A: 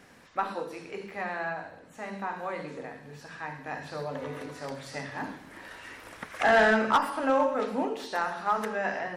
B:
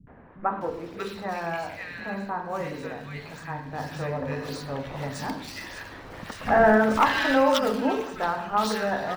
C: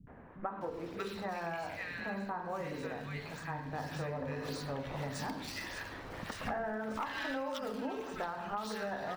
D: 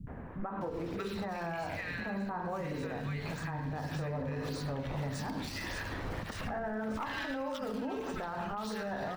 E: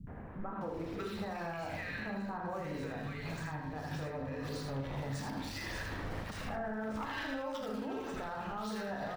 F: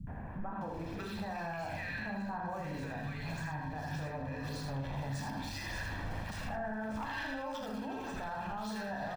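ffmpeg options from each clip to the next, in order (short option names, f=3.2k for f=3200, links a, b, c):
-filter_complex "[0:a]bass=f=250:g=8,treble=f=4k:g=12,acrossover=split=4500[a][b];[b]acrusher=samples=15:mix=1:aa=0.000001:lfo=1:lforange=24:lforate=1.7[c];[a][c]amix=inputs=2:normalize=0,acrossover=split=220|1700[d][e][f];[e]adelay=70[g];[f]adelay=610[h];[d][g][h]amix=inputs=3:normalize=0,volume=4dB"
-af "acompressor=threshold=-31dB:ratio=10,volume=-3.5dB"
-af "lowshelf=f=210:g=8.5,alimiter=level_in=10dB:limit=-24dB:level=0:latency=1:release=129,volume=-10dB,volume=5.5dB"
-af "aecho=1:1:37|80:0.355|0.562,volume=-3.5dB"
-filter_complex "[0:a]aecho=1:1:1.2:0.48,asplit=2[a][b];[b]alimiter=level_in=12.5dB:limit=-24dB:level=0:latency=1,volume=-12.5dB,volume=2dB[c];[a][c]amix=inputs=2:normalize=0,volume=-5dB"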